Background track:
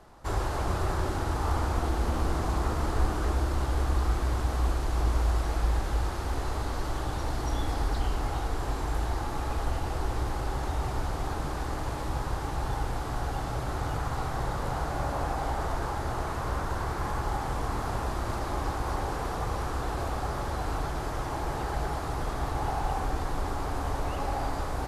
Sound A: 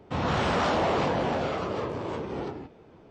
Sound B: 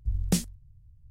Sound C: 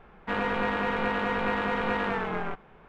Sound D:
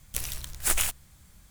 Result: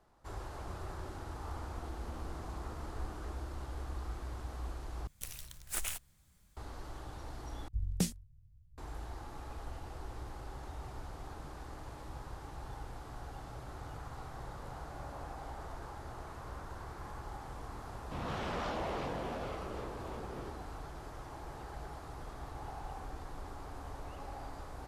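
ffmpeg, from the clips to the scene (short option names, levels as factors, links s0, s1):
-filter_complex "[0:a]volume=0.188,asplit=3[s0][s1][s2];[s0]atrim=end=5.074[s3];[4:a]atrim=end=1.5,asetpts=PTS-STARTPTS,volume=0.251[s4];[s1]atrim=start=6.566:end=7.684[s5];[2:a]atrim=end=1.1,asetpts=PTS-STARTPTS,volume=0.447[s6];[s2]atrim=start=8.776[s7];[1:a]atrim=end=3.1,asetpts=PTS-STARTPTS,volume=0.224,afade=t=in:d=0.004:c=hsin,afade=t=out:st=3.096:d=0.004:c=hsin,adelay=18000[s8];[s3][s4]acrossfade=d=0.004:c1=hsin:c2=hsin[s9];[s9][s5]acrossfade=d=0.004:c1=hsin:c2=hsin[s10];[s10][s6]acrossfade=d=0.004:c1=hsin:c2=hsin[s11];[s11][s7]acrossfade=d=0.004:c1=hsin:c2=hsin[s12];[s12][s8]amix=inputs=2:normalize=0"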